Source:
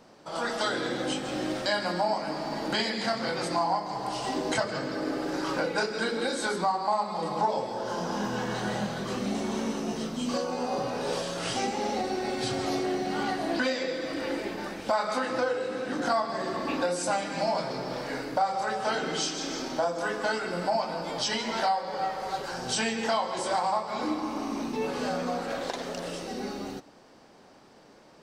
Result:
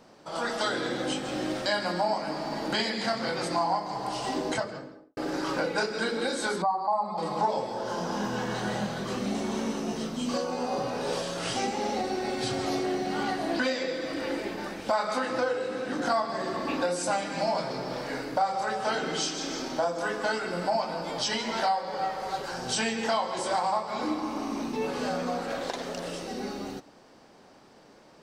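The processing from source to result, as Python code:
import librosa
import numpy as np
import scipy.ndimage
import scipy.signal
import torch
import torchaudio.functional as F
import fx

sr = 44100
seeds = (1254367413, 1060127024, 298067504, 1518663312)

y = fx.studio_fade_out(x, sr, start_s=4.36, length_s=0.81)
y = fx.spec_expand(y, sr, power=1.5, at=(6.62, 7.18))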